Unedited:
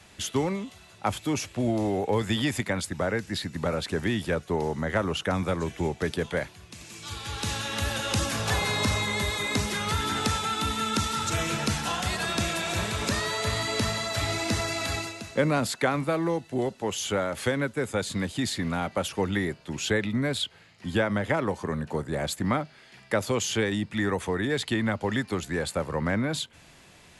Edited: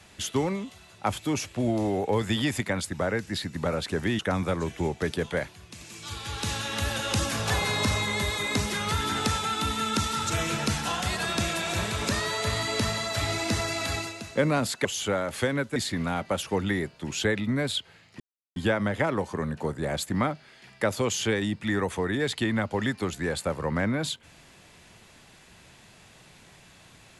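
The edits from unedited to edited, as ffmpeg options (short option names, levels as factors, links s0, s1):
-filter_complex "[0:a]asplit=5[s0][s1][s2][s3][s4];[s0]atrim=end=4.192[s5];[s1]atrim=start=5.188:end=15.852[s6];[s2]atrim=start=16.888:end=17.802[s7];[s3]atrim=start=18.418:end=20.86,asetpts=PTS-STARTPTS,afade=t=out:st=2.438:d=0.004:c=hsin,apad=pad_dur=0.36[s8];[s4]atrim=start=20.86,asetpts=PTS-STARTPTS,afade=t=in:d=0.004:c=hsin[s9];[s5][s6]acrossfade=d=0.004:c1=hsin:c2=hsin[s10];[s10][s7]acrossfade=d=0.004:c1=hsin:c2=hsin[s11];[s8][s9]concat=n=2:v=0:a=1[s12];[s11][s12]acrossfade=d=0.004:c1=hsin:c2=hsin"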